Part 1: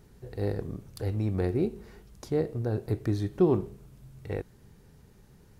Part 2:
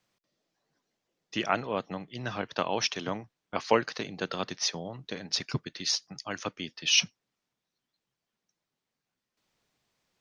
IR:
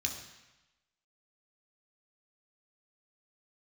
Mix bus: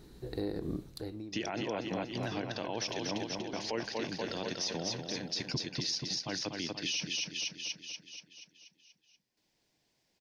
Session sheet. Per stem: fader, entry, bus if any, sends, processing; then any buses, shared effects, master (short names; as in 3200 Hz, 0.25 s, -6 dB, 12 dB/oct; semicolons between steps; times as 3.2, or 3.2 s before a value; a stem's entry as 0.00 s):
+1.0 dB, 0.00 s, no send, no echo send, thirty-one-band EQ 100 Hz -10 dB, 315 Hz +10 dB, 4000 Hz +12 dB; compressor, threshold -29 dBFS, peak gain reduction 14.5 dB; auto duck -15 dB, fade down 0.55 s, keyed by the second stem
-0.5 dB, 0.00 s, no send, echo send -7 dB, thirty-one-band EQ 315 Hz +5 dB, 1250 Hz -12 dB, 5000 Hz +5 dB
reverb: off
echo: feedback echo 0.24 s, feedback 58%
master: limiter -25 dBFS, peak gain reduction 16 dB